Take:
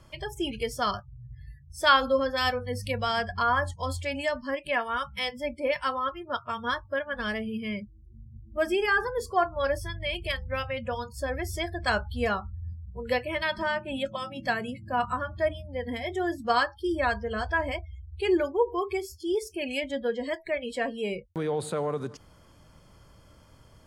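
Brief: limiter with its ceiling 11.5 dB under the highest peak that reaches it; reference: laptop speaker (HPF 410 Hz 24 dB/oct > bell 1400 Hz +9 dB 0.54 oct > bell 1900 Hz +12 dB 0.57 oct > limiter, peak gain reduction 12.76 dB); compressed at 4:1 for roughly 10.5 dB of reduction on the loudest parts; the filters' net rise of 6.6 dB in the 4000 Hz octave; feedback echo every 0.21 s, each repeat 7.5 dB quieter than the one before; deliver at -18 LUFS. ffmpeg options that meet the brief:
-af "equalizer=f=4k:t=o:g=6.5,acompressor=threshold=-26dB:ratio=4,alimiter=level_in=2dB:limit=-24dB:level=0:latency=1,volume=-2dB,highpass=f=410:w=0.5412,highpass=f=410:w=1.3066,equalizer=f=1.4k:t=o:w=0.54:g=9,equalizer=f=1.9k:t=o:w=0.57:g=12,aecho=1:1:210|420|630|840|1050:0.422|0.177|0.0744|0.0312|0.0131,volume=16.5dB,alimiter=limit=-10.5dB:level=0:latency=1"

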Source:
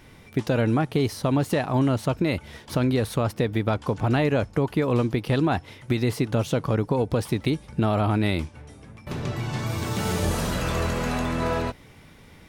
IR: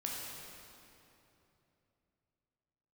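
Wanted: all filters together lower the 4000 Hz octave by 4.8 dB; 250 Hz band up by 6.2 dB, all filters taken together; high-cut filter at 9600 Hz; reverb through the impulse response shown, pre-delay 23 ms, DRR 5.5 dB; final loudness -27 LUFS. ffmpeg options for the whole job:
-filter_complex "[0:a]lowpass=9.6k,equalizer=f=250:t=o:g=7.5,equalizer=f=4k:t=o:g=-6,asplit=2[a][b];[1:a]atrim=start_sample=2205,adelay=23[c];[b][c]afir=irnorm=-1:irlink=0,volume=-7.5dB[d];[a][d]amix=inputs=2:normalize=0,volume=-6.5dB"

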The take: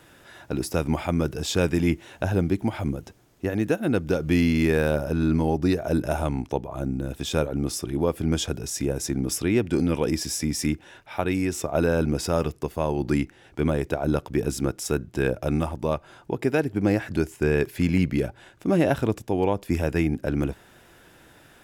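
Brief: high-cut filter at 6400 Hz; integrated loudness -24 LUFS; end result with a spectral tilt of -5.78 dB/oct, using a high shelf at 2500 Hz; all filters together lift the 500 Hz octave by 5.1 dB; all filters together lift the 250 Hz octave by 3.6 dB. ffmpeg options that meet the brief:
-af "lowpass=6.4k,equalizer=f=250:t=o:g=3,equalizer=f=500:t=o:g=5,highshelf=f=2.5k:g=7.5,volume=-2dB"

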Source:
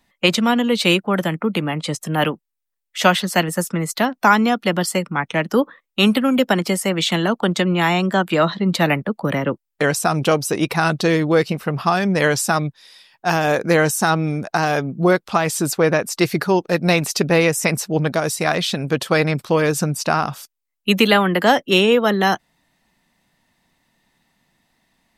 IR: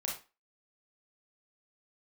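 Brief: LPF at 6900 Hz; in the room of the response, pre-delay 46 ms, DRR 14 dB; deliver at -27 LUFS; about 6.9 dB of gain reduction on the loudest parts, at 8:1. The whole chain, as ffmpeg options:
-filter_complex "[0:a]lowpass=6.9k,acompressor=threshold=-17dB:ratio=8,asplit=2[a][b];[1:a]atrim=start_sample=2205,adelay=46[c];[b][c]afir=irnorm=-1:irlink=0,volume=-16.5dB[d];[a][d]amix=inputs=2:normalize=0,volume=-4.5dB"

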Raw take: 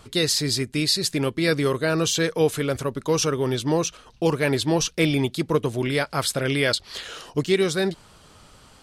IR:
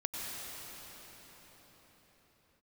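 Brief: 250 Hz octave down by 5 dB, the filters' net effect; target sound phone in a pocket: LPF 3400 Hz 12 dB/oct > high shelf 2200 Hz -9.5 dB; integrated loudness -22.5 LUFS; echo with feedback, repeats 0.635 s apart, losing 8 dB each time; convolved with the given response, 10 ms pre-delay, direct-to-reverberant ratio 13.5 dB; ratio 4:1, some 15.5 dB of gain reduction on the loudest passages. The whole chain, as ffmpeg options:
-filter_complex "[0:a]equalizer=f=250:t=o:g=-7.5,acompressor=threshold=-37dB:ratio=4,aecho=1:1:635|1270|1905|2540|3175:0.398|0.159|0.0637|0.0255|0.0102,asplit=2[a][b];[1:a]atrim=start_sample=2205,adelay=10[c];[b][c]afir=irnorm=-1:irlink=0,volume=-17.5dB[d];[a][d]amix=inputs=2:normalize=0,lowpass=3.4k,highshelf=f=2.2k:g=-9.5,volume=17.5dB"

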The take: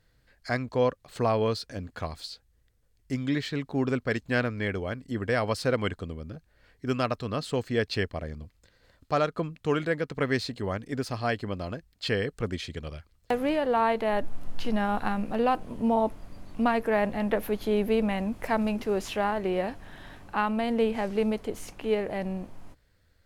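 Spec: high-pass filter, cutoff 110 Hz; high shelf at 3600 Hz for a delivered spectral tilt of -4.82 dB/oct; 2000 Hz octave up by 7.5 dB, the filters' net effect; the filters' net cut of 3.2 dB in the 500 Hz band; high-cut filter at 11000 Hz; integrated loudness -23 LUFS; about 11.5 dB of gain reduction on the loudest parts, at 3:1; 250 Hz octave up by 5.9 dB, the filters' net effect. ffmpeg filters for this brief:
-af "highpass=110,lowpass=11k,equalizer=f=250:t=o:g=8.5,equalizer=f=500:t=o:g=-7,equalizer=f=2k:t=o:g=7.5,highshelf=f=3.6k:g=8.5,acompressor=threshold=-32dB:ratio=3,volume=11.5dB"

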